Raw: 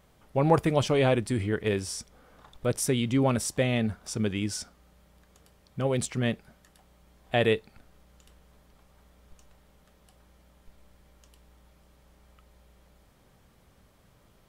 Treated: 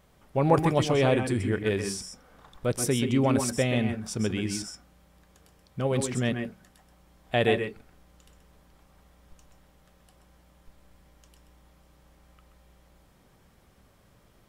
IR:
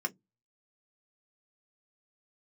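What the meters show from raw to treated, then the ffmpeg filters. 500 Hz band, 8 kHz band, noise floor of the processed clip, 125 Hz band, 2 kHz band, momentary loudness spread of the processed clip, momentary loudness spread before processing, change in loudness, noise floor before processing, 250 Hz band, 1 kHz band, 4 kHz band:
+0.5 dB, +0.5 dB, -61 dBFS, +0.5 dB, +1.0 dB, 11 LU, 10 LU, +0.5 dB, -62 dBFS, +1.5 dB, +1.0 dB, +0.5 dB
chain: -filter_complex "[0:a]asplit=2[a][b];[1:a]atrim=start_sample=2205,adelay=129[c];[b][c]afir=irnorm=-1:irlink=0,volume=-9.5dB[d];[a][d]amix=inputs=2:normalize=0"

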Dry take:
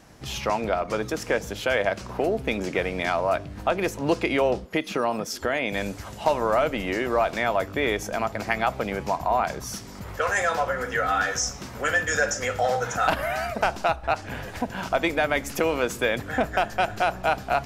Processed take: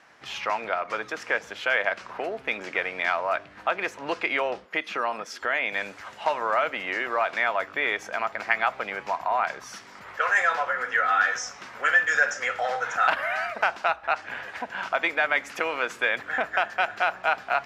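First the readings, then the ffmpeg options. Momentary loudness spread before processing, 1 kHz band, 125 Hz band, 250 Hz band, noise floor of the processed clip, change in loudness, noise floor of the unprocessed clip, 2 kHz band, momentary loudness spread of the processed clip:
6 LU, -0.5 dB, under -15 dB, -12.5 dB, -47 dBFS, -0.5 dB, -40 dBFS, +3.5 dB, 9 LU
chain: -af "bandpass=f=1.7k:t=q:w=1.1:csg=0,volume=4dB"

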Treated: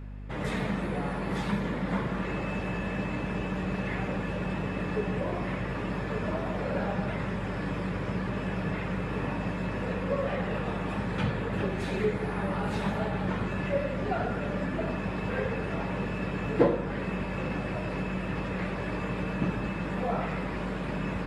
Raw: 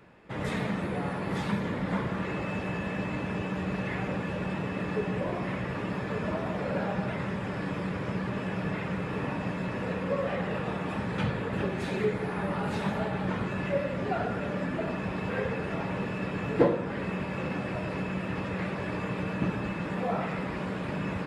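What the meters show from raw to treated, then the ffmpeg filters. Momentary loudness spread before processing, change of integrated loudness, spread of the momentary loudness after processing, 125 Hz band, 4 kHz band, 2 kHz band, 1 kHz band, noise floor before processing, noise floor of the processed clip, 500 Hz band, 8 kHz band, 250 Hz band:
3 LU, +0.5 dB, 3 LU, +1.0 dB, 0.0 dB, 0.0 dB, 0.0 dB, -35 dBFS, -34 dBFS, 0.0 dB, n/a, 0.0 dB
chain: -af "aeval=exprs='val(0)+0.0112*(sin(2*PI*50*n/s)+sin(2*PI*2*50*n/s)/2+sin(2*PI*3*50*n/s)/3+sin(2*PI*4*50*n/s)/4+sin(2*PI*5*50*n/s)/5)':c=same"

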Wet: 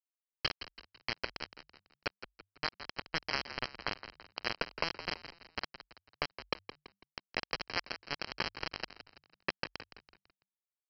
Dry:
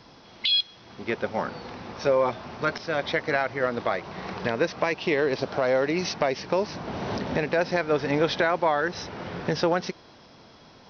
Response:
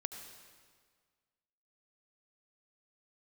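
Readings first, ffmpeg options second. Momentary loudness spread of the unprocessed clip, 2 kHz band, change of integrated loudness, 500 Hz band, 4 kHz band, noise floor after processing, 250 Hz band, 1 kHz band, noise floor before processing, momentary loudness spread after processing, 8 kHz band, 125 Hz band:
10 LU, -10.0 dB, -13.0 dB, -22.0 dB, -9.5 dB, under -85 dBFS, -20.0 dB, -14.5 dB, -52 dBFS, 15 LU, n/a, -17.5 dB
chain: -filter_complex "[0:a]highpass=f=390:w=0.5412,highpass=f=390:w=1.3066,equalizer=f=700:w=1.7:g=-10.5,acompressor=threshold=-40dB:ratio=3,aresample=11025,acrusher=bits=4:mix=0:aa=0.000001,aresample=44100,asuperstop=centerf=3600:order=8:qfactor=5.1,asplit=5[a][b][c][d][e];[b]adelay=166,afreqshift=-50,volume=-12dB[f];[c]adelay=332,afreqshift=-100,volume=-19.5dB[g];[d]adelay=498,afreqshift=-150,volume=-27.1dB[h];[e]adelay=664,afreqshift=-200,volume=-34.6dB[i];[a][f][g][h][i]amix=inputs=5:normalize=0,volume=7dB"

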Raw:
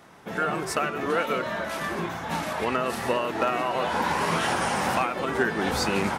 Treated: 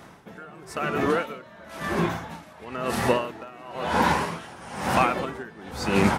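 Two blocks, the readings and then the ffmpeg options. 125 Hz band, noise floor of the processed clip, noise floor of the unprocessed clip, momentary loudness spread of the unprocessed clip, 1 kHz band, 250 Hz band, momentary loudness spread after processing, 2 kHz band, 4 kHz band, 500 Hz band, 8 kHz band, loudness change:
+3.5 dB, -48 dBFS, -35 dBFS, 5 LU, -0.5 dB, +2.5 dB, 19 LU, -2.0 dB, -2.5 dB, -0.5 dB, -3.5 dB, +0.5 dB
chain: -af "lowshelf=f=210:g=6.5,aeval=exprs='val(0)*pow(10,-23*(0.5-0.5*cos(2*PI*0.99*n/s))/20)':c=same,volume=4.5dB"

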